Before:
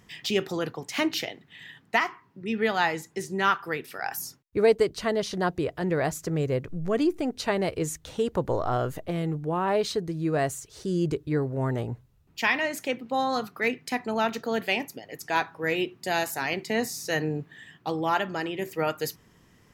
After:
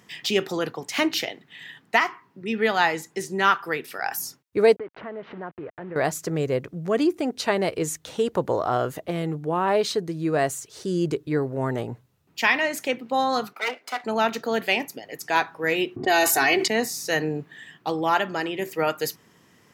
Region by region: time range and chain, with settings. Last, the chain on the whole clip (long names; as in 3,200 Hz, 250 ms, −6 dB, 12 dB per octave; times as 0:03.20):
0:04.76–0:05.96: hold until the input has moved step −34.5 dBFS + low-pass filter 2,200 Hz 24 dB per octave + downward compressor 2.5 to 1, threshold −40 dBFS
0:13.53–0:14.04: lower of the sound and its delayed copy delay 1.4 ms + high-pass filter 300 Hz 24 dB per octave + high-shelf EQ 5,200 Hz −7.5 dB
0:15.96–0:16.68: low-pass that shuts in the quiet parts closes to 310 Hz, open at −27 dBFS + comb filter 2.7 ms, depth 77% + envelope flattener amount 70%
whole clip: high-pass filter 100 Hz; low-shelf EQ 150 Hz −8 dB; level +4 dB